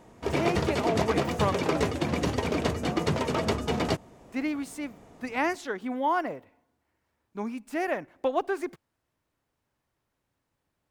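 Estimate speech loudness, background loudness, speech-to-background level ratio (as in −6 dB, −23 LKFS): −31.5 LKFS, −28.5 LKFS, −3.0 dB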